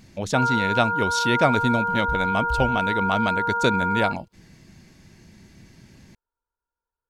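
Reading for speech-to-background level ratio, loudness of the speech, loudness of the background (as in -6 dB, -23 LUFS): -0.5 dB, -24.5 LUFS, -24.0 LUFS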